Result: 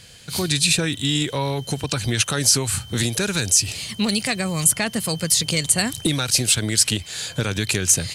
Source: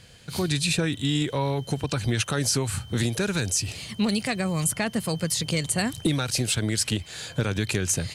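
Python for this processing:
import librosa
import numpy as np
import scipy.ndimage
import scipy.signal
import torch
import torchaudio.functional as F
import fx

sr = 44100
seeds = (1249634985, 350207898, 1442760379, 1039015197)

y = fx.high_shelf(x, sr, hz=2500.0, db=8.5)
y = fx.dmg_crackle(y, sr, seeds[0], per_s=200.0, level_db=-49.0, at=(2.37, 3.03), fade=0.02)
y = y * librosa.db_to_amplitude(1.5)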